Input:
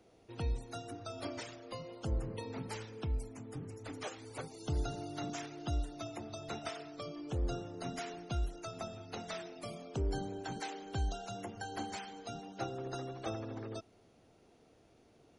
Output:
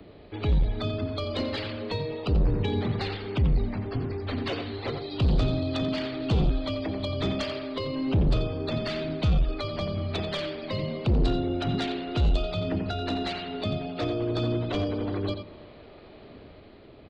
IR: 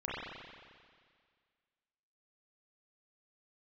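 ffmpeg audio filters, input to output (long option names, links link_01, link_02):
-filter_complex "[0:a]aresample=11025,aresample=44100,asplit=2[link_01][link_02];[1:a]atrim=start_sample=2205[link_03];[link_02][link_03]afir=irnorm=-1:irlink=0,volume=-23.5dB[link_04];[link_01][link_04]amix=inputs=2:normalize=0,asetrate=39690,aresample=44100,acrossover=split=330[link_05][link_06];[link_05]aphaser=in_gain=1:out_gain=1:delay=2.6:decay=0.49:speed=1.1:type=triangular[link_07];[link_06]dynaudnorm=framelen=140:gausssize=11:maxgain=3.5dB[link_08];[link_07][link_08]amix=inputs=2:normalize=0,asplit=2[link_09][link_10];[link_10]adelay=87.46,volume=-9dB,highshelf=frequency=4000:gain=-1.97[link_11];[link_09][link_11]amix=inputs=2:normalize=0,aeval=exprs='0.15*sin(PI/2*3.55*val(0)/0.15)':channel_layout=same,acrossover=split=420|3000[link_12][link_13][link_14];[link_13]acompressor=threshold=-38dB:ratio=3[link_15];[link_12][link_15][link_14]amix=inputs=3:normalize=0,volume=-1dB"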